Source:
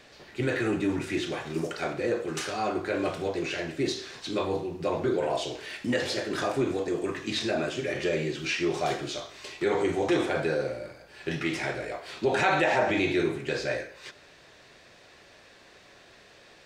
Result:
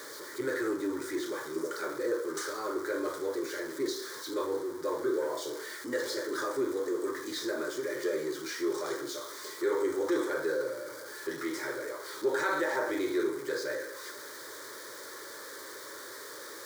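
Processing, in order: jump at every zero crossing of -33 dBFS; high-pass 240 Hz 12 dB/octave; static phaser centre 720 Hz, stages 6; trim -3 dB

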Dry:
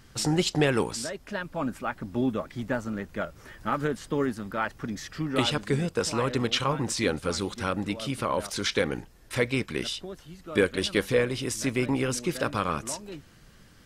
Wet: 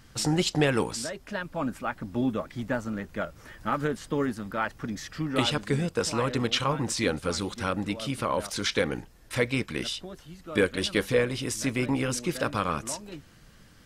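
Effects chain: band-stop 390 Hz, Q 13

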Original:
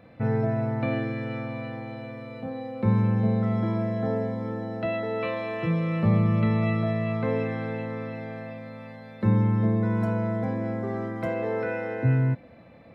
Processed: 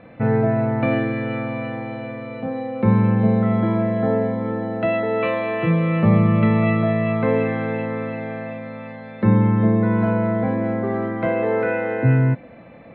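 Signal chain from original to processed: low-pass 3.3 kHz 24 dB/octave; peaking EQ 82 Hz -7 dB 0.95 oct; trim +8 dB

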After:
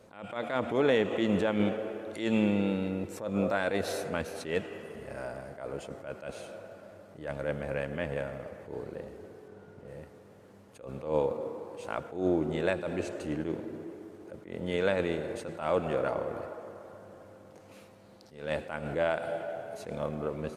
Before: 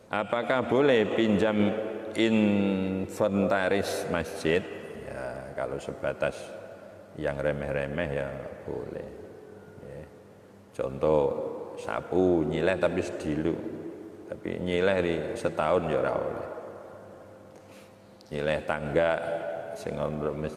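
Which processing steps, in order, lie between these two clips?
9.48–9.88 s: treble shelf 7.4 kHz -9 dB; attacks held to a fixed rise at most 120 dB/s; trim -3 dB

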